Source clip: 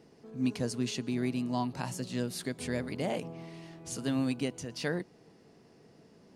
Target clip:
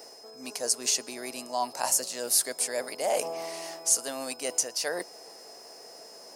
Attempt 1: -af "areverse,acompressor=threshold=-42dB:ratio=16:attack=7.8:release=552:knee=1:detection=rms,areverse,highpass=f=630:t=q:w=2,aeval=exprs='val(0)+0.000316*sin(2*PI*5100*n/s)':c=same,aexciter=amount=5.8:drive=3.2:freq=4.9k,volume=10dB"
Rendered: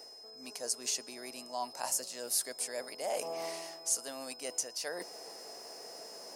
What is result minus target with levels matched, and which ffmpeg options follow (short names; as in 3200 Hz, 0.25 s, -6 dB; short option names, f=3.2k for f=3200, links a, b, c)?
compressor: peak gain reduction +8 dB
-af "areverse,acompressor=threshold=-33.5dB:ratio=16:attack=7.8:release=552:knee=1:detection=rms,areverse,highpass=f=630:t=q:w=2,aeval=exprs='val(0)+0.000316*sin(2*PI*5100*n/s)':c=same,aexciter=amount=5.8:drive=3.2:freq=4.9k,volume=10dB"